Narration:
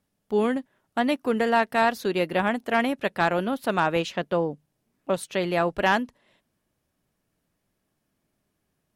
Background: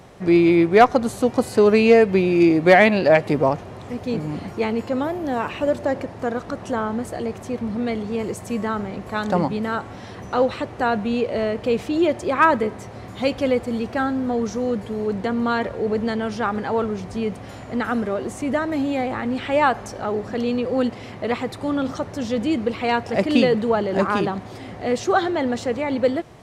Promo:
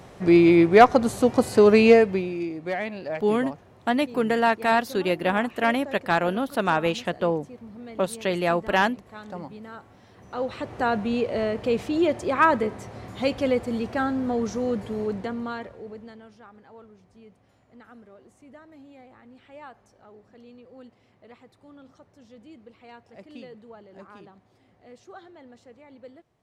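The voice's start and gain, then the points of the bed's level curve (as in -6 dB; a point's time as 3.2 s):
2.90 s, +0.5 dB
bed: 1.9 s -0.5 dB
2.49 s -16.5 dB
10.11 s -16.5 dB
10.74 s -3 dB
15.01 s -3 dB
16.44 s -26 dB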